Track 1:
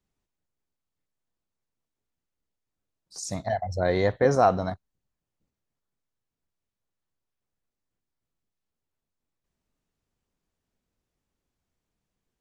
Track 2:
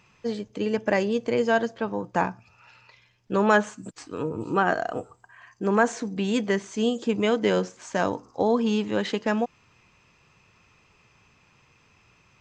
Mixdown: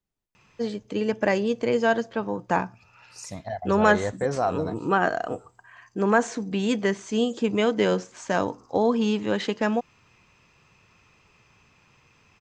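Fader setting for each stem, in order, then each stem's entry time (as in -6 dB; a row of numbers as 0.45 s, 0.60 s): -5.0 dB, +0.5 dB; 0.00 s, 0.35 s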